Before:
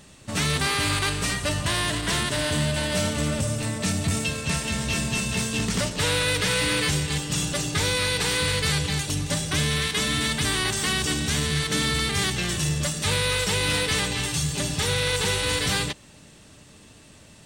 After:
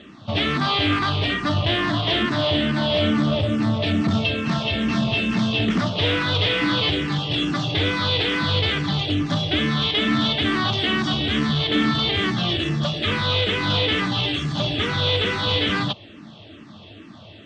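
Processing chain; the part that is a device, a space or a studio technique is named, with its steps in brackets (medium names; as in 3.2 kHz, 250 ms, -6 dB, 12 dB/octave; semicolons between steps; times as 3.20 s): barber-pole phaser into a guitar amplifier (barber-pole phaser -2.3 Hz; saturation -25 dBFS, distortion -13 dB; cabinet simulation 89–4200 Hz, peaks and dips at 100 Hz +9 dB, 220 Hz +8 dB, 320 Hz +10 dB, 680 Hz +8 dB, 1.2 kHz +6 dB, 3.3 kHz +9 dB); trim +6 dB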